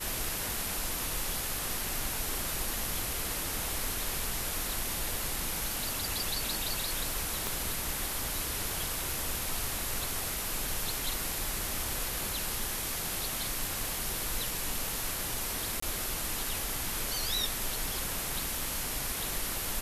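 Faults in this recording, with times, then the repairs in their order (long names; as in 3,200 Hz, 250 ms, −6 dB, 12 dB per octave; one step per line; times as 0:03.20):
0:07.47: click
0:15.80–0:15.82: drop-out 24 ms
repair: click removal
repair the gap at 0:15.80, 24 ms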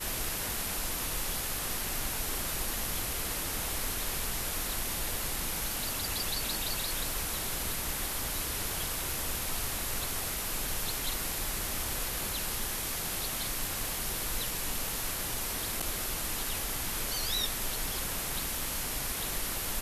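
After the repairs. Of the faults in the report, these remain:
0:07.47: click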